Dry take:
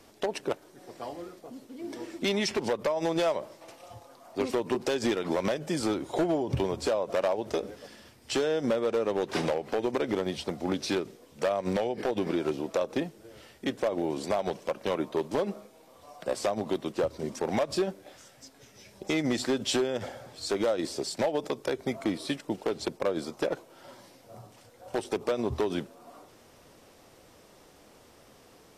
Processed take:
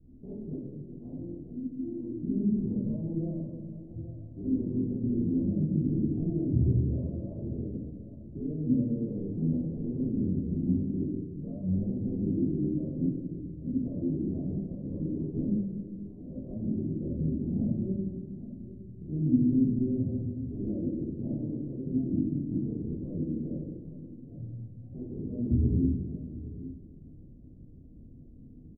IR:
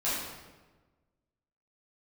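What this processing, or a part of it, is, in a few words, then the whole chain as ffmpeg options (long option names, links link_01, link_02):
club heard from the street: -filter_complex "[0:a]equalizer=frequency=200:width=2.3:gain=-4.5,asplit=2[link_01][link_02];[link_02]adelay=816.3,volume=-18dB,highshelf=frequency=4000:gain=-18.4[link_03];[link_01][link_03]amix=inputs=2:normalize=0,alimiter=level_in=1dB:limit=-24dB:level=0:latency=1,volume=-1dB,lowpass=frequency=220:width=0.5412,lowpass=frequency=220:width=1.3066[link_04];[1:a]atrim=start_sample=2205[link_05];[link_04][link_05]afir=irnorm=-1:irlink=0,volume=7.5dB"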